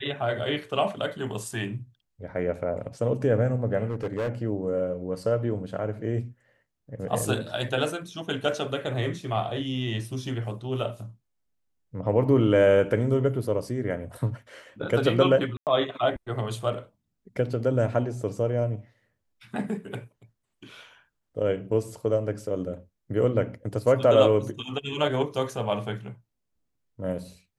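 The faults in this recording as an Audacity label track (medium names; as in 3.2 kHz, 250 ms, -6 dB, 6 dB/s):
3.880000	4.290000	clipped -24.5 dBFS
15.570000	15.670000	dropout 98 ms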